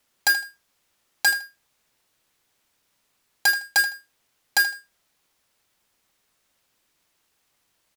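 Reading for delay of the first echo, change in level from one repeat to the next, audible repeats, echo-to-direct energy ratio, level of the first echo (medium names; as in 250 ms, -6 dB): 79 ms, -14.0 dB, 2, -13.5 dB, -13.5 dB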